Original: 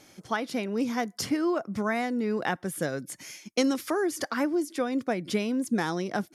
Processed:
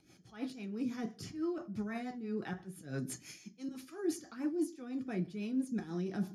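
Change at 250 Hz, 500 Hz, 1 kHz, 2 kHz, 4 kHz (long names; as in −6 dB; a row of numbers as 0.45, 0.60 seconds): −8.0, −13.0, −18.0, −16.5, −16.0 decibels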